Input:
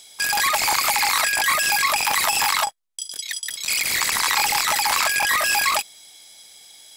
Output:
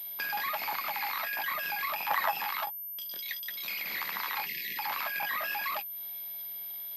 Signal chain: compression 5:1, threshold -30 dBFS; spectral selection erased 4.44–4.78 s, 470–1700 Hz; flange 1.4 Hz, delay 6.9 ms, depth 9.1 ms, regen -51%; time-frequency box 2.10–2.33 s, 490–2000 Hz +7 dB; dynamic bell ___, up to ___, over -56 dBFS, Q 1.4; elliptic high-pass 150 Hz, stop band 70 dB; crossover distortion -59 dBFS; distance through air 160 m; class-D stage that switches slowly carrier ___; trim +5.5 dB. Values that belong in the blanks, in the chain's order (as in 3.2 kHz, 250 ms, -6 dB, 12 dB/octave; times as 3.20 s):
350 Hz, -4 dB, 13 kHz